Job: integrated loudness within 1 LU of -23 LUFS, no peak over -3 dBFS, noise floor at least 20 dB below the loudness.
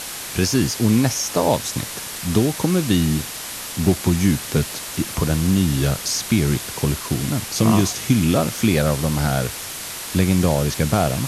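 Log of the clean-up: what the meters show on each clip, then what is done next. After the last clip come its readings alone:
noise floor -32 dBFS; noise floor target -40 dBFS; loudness -20.0 LUFS; peak level -3.5 dBFS; loudness target -23.0 LUFS
-> noise print and reduce 8 dB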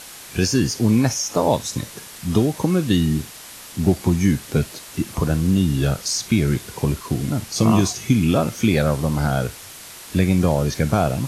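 noise floor -39 dBFS; noise floor target -41 dBFS
-> noise print and reduce 6 dB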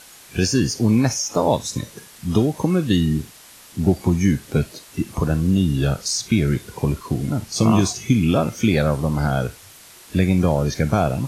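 noise floor -45 dBFS; loudness -20.5 LUFS; peak level -4.5 dBFS; loudness target -23.0 LUFS
-> trim -2.5 dB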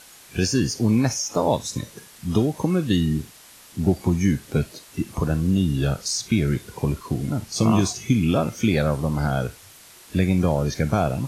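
loudness -23.0 LUFS; peak level -7.0 dBFS; noise floor -48 dBFS

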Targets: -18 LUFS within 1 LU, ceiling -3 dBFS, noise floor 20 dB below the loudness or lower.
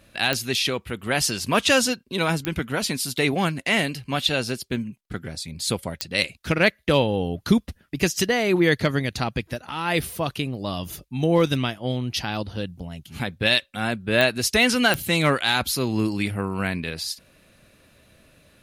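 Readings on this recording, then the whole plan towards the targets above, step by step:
clicks found 5; loudness -23.5 LUFS; peak level -6.5 dBFS; loudness target -18.0 LUFS
-> de-click; trim +5.5 dB; peak limiter -3 dBFS

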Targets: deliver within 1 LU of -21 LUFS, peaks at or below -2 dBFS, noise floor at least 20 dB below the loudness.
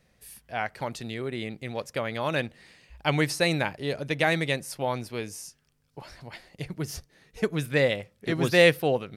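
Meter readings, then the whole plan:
loudness -27.5 LUFS; peak level -7.0 dBFS; loudness target -21.0 LUFS
-> trim +6.5 dB; peak limiter -2 dBFS

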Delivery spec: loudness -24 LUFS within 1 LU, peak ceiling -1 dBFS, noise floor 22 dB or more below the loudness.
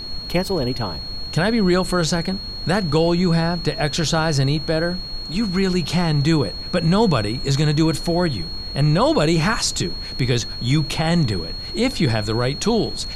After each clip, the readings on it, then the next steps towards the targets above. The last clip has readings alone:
steady tone 4.3 kHz; tone level -30 dBFS; noise floor -31 dBFS; noise floor target -43 dBFS; loudness -20.5 LUFS; peak level -5.5 dBFS; loudness target -24.0 LUFS
-> band-stop 4.3 kHz, Q 30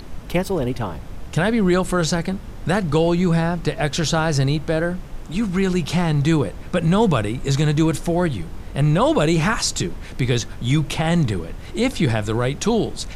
steady tone not found; noise floor -35 dBFS; noise floor target -43 dBFS
-> noise print and reduce 8 dB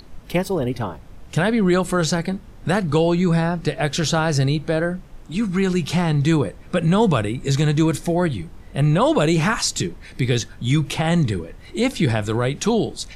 noise floor -42 dBFS; noise floor target -43 dBFS
-> noise print and reduce 6 dB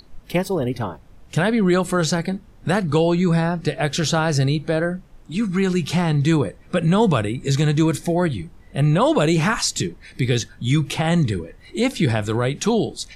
noise floor -47 dBFS; loudness -20.5 LUFS; peak level -5.5 dBFS; loudness target -24.0 LUFS
-> trim -3.5 dB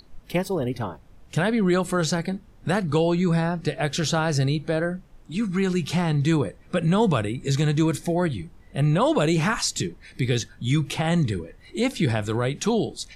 loudness -24.0 LUFS; peak level -9.0 dBFS; noise floor -50 dBFS

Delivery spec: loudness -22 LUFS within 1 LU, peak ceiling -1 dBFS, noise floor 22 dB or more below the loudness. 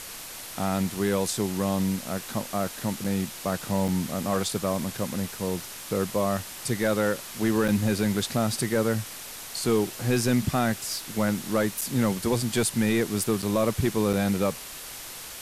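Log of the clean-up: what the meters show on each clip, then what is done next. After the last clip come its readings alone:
dropouts 6; longest dropout 5.4 ms; noise floor -40 dBFS; noise floor target -49 dBFS; loudness -27.0 LUFS; peak level -13.0 dBFS; loudness target -22.0 LUFS
-> interpolate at 3.04/3.88/7.68/11.81/13.42/14.13 s, 5.4 ms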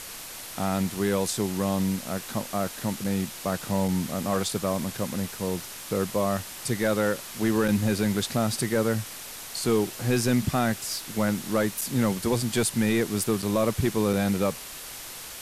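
dropouts 0; noise floor -40 dBFS; noise floor target -49 dBFS
-> noise reduction 9 dB, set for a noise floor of -40 dBFS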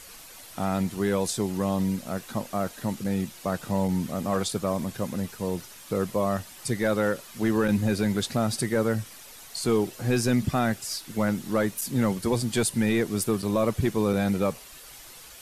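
noise floor -46 dBFS; noise floor target -49 dBFS
-> noise reduction 6 dB, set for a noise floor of -46 dBFS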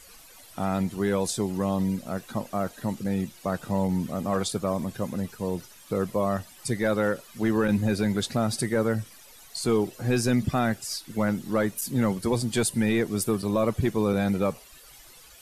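noise floor -51 dBFS; loudness -27.0 LUFS; peak level -13.5 dBFS; loudness target -22.0 LUFS
-> trim +5 dB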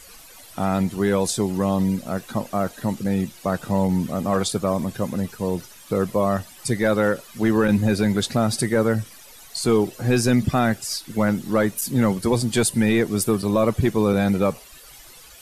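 loudness -22.0 LUFS; peak level -8.5 dBFS; noise floor -46 dBFS

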